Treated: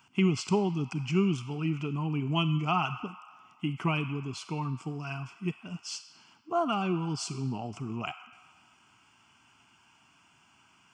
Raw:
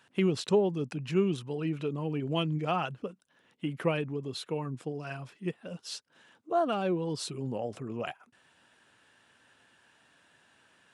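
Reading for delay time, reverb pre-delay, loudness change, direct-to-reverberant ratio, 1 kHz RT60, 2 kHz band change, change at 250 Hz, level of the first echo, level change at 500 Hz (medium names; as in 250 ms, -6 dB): no echo, 33 ms, +1.0 dB, 10.0 dB, 1.8 s, +3.5 dB, +2.0 dB, no echo, -4.5 dB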